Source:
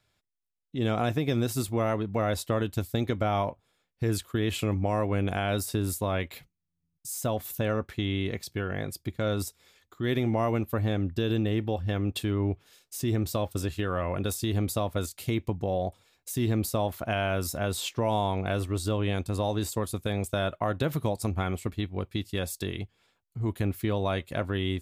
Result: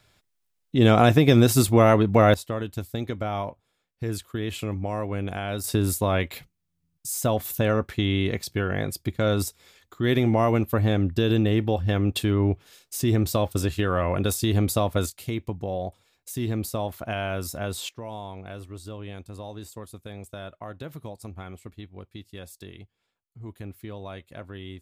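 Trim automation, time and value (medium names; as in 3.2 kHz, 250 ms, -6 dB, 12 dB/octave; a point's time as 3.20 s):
+10.5 dB
from 2.34 s -2 dB
from 5.64 s +5.5 dB
from 15.10 s -1 dB
from 17.89 s -10 dB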